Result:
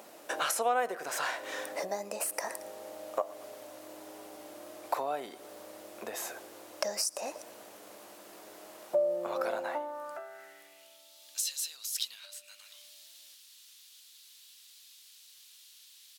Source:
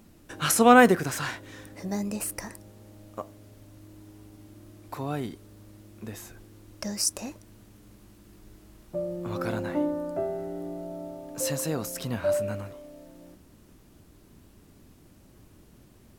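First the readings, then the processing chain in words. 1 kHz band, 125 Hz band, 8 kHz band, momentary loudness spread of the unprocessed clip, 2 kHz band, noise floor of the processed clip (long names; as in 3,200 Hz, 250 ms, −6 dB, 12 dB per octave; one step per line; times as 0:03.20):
−7.0 dB, below −25 dB, −4.0 dB, 22 LU, −8.5 dB, −57 dBFS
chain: repeating echo 113 ms, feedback 41%, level −23 dB
downward compressor 6 to 1, threshold −39 dBFS, peak gain reduction 25.5 dB
high-pass filter sweep 610 Hz → 3,700 Hz, 0:09.53–0:11.12
level +8 dB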